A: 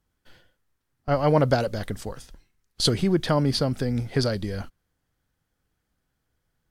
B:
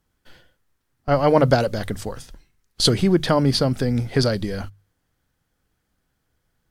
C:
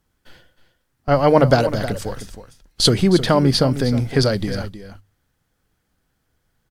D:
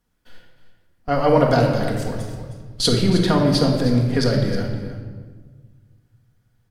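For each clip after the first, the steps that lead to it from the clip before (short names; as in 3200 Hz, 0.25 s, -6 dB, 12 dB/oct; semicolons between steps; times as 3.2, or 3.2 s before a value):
notches 50/100/150 Hz; gain +4.5 dB
echo 0.312 s -12.5 dB; gain +2.5 dB
shoebox room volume 1600 m³, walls mixed, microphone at 1.8 m; gain -5 dB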